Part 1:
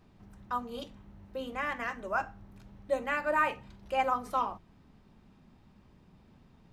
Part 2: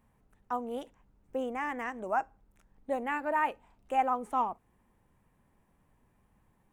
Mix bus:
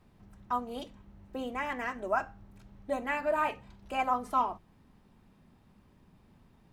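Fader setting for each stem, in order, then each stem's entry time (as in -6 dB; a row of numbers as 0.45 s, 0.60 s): -2.5 dB, -1.0 dB; 0.00 s, 0.00 s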